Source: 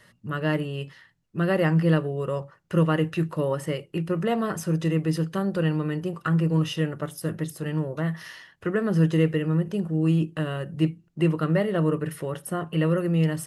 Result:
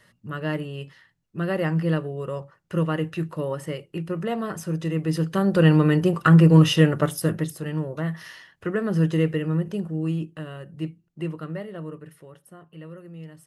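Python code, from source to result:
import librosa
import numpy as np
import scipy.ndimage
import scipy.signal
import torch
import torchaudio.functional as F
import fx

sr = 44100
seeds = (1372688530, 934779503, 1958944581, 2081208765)

y = fx.gain(x, sr, db=fx.line((4.89, -2.5), (5.74, 9.0), (7.08, 9.0), (7.64, -0.5), (9.71, -0.5), (10.41, -7.5), (11.21, -7.5), (12.6, -18.0)))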